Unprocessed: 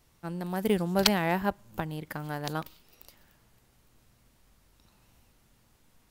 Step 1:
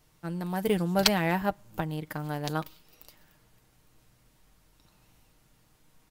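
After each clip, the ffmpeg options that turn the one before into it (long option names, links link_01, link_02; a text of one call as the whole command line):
ffmpeg -i in.wav -af "aecho=1:1:6.5:0.39" out.wav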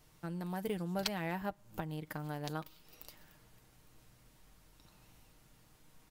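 ffmpeg -i in.wav -af "acompressor=threshold=-43dB:ratio=2" out.wav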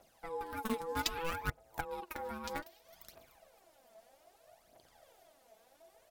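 ffmpeg -i in.wav -filter_complex "[0:a]asplit=2[link_01][link_02];[link_02]acrusher=bits=4:mix=0:aa=0.000001,volume=-7dB[link_03];[link_01][link_03]amix=inputs=2:normalize=0,aeval=exprs='val(0)*sin(2*PI*660*n/s)':channel_layout=same,aphaser=in_gain=1:out_gain=1:delay=4.7:decay=0.64:speed=0.63:type=triangular,volume=-1dB" out.wav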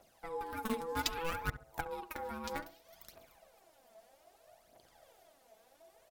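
ffmpeg -i in.wav -filter_complex "[0:a]asplit=2[link_01][link_02];[link_02]adelay=68,lowpass=frequency=1400:poles=1,volume=-12.5dB,asplit=2[link_03][link_04];[link_04]adelay=68,lowpass=frequency=1400:poles=1,volume=0.31,asplit=2[link_05][link_06];[link_06]adelay=68,lowpass=frequency=1400:poles=1,volume=0.31[link_07];[link_01][link_03][link_05][link_07]amix=inputs=4:normalize=0" out.wav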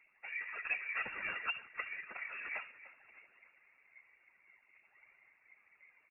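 ffmpeg -i in.wav -af "aecho=1:1:297|594|891|1188:0.158|0.0729|0.0335|0.0154,afftfilt=real='hypot(re,im)*cos(2*PI*random(0))':imag='hypot(re,im)*sin(2*PI*random(1))':win_size=512:overlap=0.75,lowpass=frequency=2400:width_type=q:width=0.5098,lowpass=frequency=2400:width_type=q:width=0.6013,lowpass=frequency=2400:width_type=q:width=0.9,lowpass=frequency=2400:width_type=q:width=2.563,afreqshift=-2800,volume=3.5dB" out.wav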